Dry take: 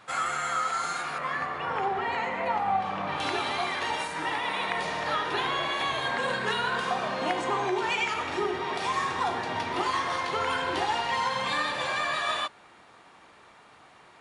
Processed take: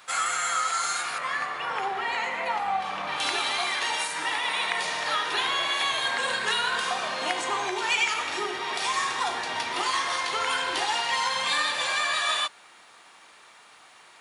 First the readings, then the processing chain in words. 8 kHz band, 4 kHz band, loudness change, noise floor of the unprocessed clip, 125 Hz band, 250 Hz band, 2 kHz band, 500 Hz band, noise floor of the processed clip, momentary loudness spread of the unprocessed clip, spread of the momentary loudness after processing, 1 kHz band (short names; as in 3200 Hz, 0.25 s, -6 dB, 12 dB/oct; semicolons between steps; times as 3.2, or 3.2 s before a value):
+10.0 dB, +6.5 dB, +2.5 dB, -55 dBFS, -10.0 dB, -6.0 dB, +3.0 dB, -3.5 dB, -53 dBFS, 3 LU, 5 LU, 0.0 dB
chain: tilt +3.5 dB/oct